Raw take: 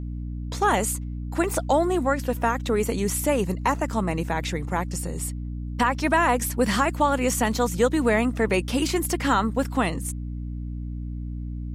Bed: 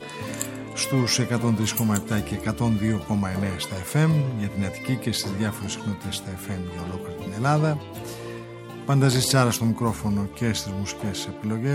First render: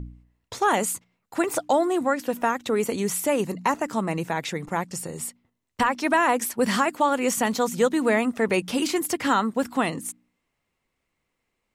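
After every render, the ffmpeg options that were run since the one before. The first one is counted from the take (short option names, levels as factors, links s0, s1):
-af "bandreject=f=60:t=h:w=4,bandreject=f=120:t=h:w=4,bandreject=f=180:t=h:w=4,bandreject=f=240:t=h:w=4,bandreject=f=300:t=h:w=4"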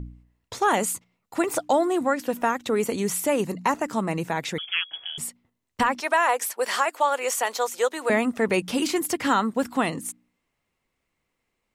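-filter_complex "[0:a]asettb=1/sr,asplit=3[s0][s1][s2];[s0]atrim=end=0.934[s3];[s1]atrim=start=0.93:end=1.47,asetpts=PTS-STARTPTS,afade=t=in:d=0.004:c=qsin,afade=t=out:st=0.536:d=0.004:c=qsin,bandreject=f=1600:w=10[s4];[s2]atrim=start=1.466[s5];[s3][s4]acrossfade=d=0.004:c1=hsin:c2=qsin[s6];[s6][s5]acrossfade=d=0.004:c1=qsin:c2=hsin,asettb=1/sr,asplit=3[s7][s8][s9];[s7]atrim=end=4.584[s10];[s8]atrim=start=4.58:end=5.18,asetpts=PTS-STARTPTS,afade=t=in:d=0.004:c=qsin,afade=t=out:st=0.596:d=0.004:c=qsin,lowpass=f=3000:t=q:w=0.5098,lowpass=f=3000:t=q:w=0.6013,lowpass=f=3000:t=q:w=0.9,lowpass=f=3000:t=q:w=2.563,afreqshift=-3500[s11];[s9]atrim=start=5.176[s12];[s10][s11]acrossfade=d=0.004:c1=hsin:c2=qsin[s13];[s13][s12]acrossfade=d=0.004:c1=qsin:c2=hsin,asettb=1/sr,asplit=3[s14][s15][s16];[s14]atrim=end=6.004[s17];[s15]atrim=start=6:end=8.1,asetpts=PTS-STARTPTS,afade=t=in:d=0.004:c=qsin,afade=t=out:st=2.096:d=0.004:c=qsin,highpass=f=460:w=0.5412,highpass=f=460:w=1.3066[s18];[s16]atrim=start=8.096[s19];[s17][s18]acrossfade=d=0.004:c1=hsin:c2=qsin[s20];[s20][s19]acrossfade=d=0.004:c1=qsin:c2=hsin"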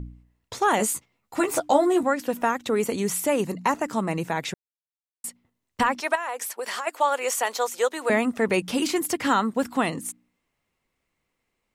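-filter_complex "[0:a]asettb=1/sr,asplit=3[s0][s1][s2];[s0]atrim=end=0.784[s3];[s1]atrim=start=0.78:end=2.03,asetpts=PTS-STARTPTS,afade=t=in:d=0.004:c=qsin,afade=t=out:st=1.246:d=0.004:c=qsin,asplit=2[s4][s5];[s5]adelay=14,volume=0.668[s6];[s4][s6]amix=inputs=2:normalize=0,atrim=end_sample=55125[s7];[s2]atrim=start=2.026[s8];[s3][s7]acrossfade=d=0.004:c1=hsin:c2=qsin[s9];[s9][s8]acrossfade=d=0.004:c1=qsin:c2=hsin,asettb=1/sr,asplit=3[s10][s11][s12];[s10]atrim=end=6.154[s13];[s11]atrim=start=6.15:end=6.87,asetpts=PTS-STARTPTS,afade=t=in:d=0.004:c=qsin,afade=t=out:st=0.716:d=0.004:c=qsin,acompressor=threshold=0.0447:ratio=6:attack=3.2:release=140:knee=1:detection=peak[s14];[s12]atrim=start=6.866[s15];[s13][s14]acrossfade=d=0.004:c1=hsin:c2=qsin[s16];[s16][s15]acrossfade=d=0.004:c1=qsin:c2=hsin,asplit=3[s17][s18][s19];[s17]atrim=end=4.54,asetpts=PTS-STARTPTS,afade=t=out:st=4.536:d=0.004:c=hsin[s20];[s18]atrim=start=4.54:end=5.24,asetpts=PTS-STARTPTS,volume=0[s21];[s19]atrim=start=5.24,asetpts=PTS-STARTPTS,afade=t=in:d=0.004:c=hsin[s22];[s20][s21][s22]concat=n=3:v=0:a=1"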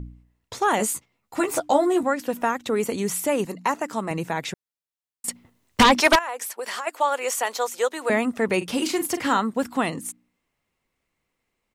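-filter_complex "[0:a]asettb=1/sr,asplit=3[s0][s1][s2];[s0]atrim=end=3.454[s3];[s1]atrim=start=3.45:end=4.11,asetpts=PTS-STARTPTS,afade=t=in:d=0.004:c=qsin,afade=t=out:st=0.656:d=0.004:c=qsin,highpass=f=260:p=1[s4];[s2]atrim=start=4.106[s5];[s3][s4]acrossfade=d=0.004:c1=hsin:c2=qsin[s6];[s6][s5]acrossfade=d=0.004:c1=qsin:c2=hsin,asettb=1/sr,asplit=3[s7][s8][s9];[s7]atrim=end=5.284[s10];[s8]atrim=start=5.28:end=6.19,asetpts=PTS-STARTPTS,afade=t=in:d=0.004:c=qsin,afade=t=out:st=0.906:d=0.004:c=qsin,aeval=exprs='0.335*sin(PI/2*2.82*val(0)/0.335)':c=same[s11];[s9]atrim=start=6.186[s12];[s10][s11]acrossfade=d=0.004:c1=hsin:c2=qsin[s13];[s13][s12]acrossfade=d=0.004:c1=qsin:c2=hsin,asplit=3[s14][s15][s16];[s14]afade=t=out:st=8.6:d=0.02[s17];[s15]asplit=2[s18][s19];[s19]adelay=41,volume=0.299[s20];[s18][s20]amix=inputs=2:normalize=0,afade=t=in:st=8.6:d=0.02,afade=t=out:st=9.38:d=0.02[s21];[s16]afade=t=in:st=9.38:d=0.02[s22];[s17][s21][s22]amix=inputs=3:normalize=0"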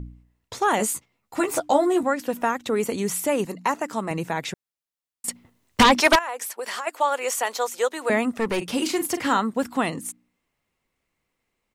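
-filter_complex "[0:a]asettb=1/sr,asplit=3[s0][s1][s2];[s0]atrim=end=8.304[s3];[s1]atrim=start=8.3:end=8.73,asetpts=PTS-STARTPTS,afade=t=in:d=0.004:c=qsin,afade=t=out:st=0.426:d=0.004:c=qsin,aeval=exprs='clip(val(0),-1,0.0668)':c=same[s4];[s2]atrim=start=8.726[s5];[s3][s4]acrossfade=d=0.004:c1=hsin:c2=qsin[s6];[s6][s5]acrossfade=d=0.004:c1=qsin:c2=hsin"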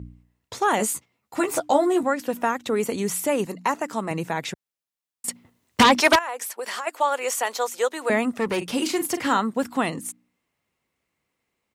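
-af "highpass=67"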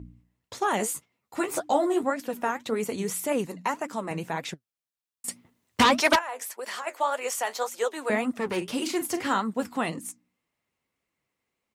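-af "flanger=delay=2.8:depth=9.3:regen=58:speed=1.8:shape=triangular"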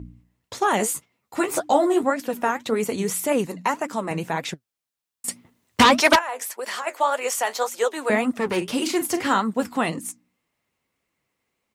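-af "volume=1.78"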